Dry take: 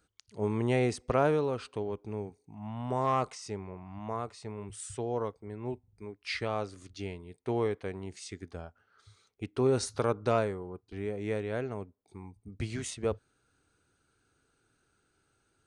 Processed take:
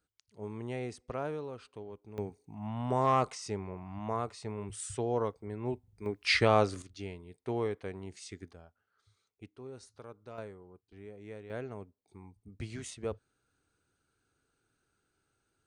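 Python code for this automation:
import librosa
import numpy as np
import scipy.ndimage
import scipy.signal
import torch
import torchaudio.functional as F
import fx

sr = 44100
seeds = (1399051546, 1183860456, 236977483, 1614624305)

y = fx.gain(x, sr, db=fx.steps((0.0, -10.5), (2.18, 1.5), (6.06, 8.5), (6.82, -3.0), (8.53, -11.5), (9.56, -20.0), (10.38, -13.0), (11.5, -5.5)))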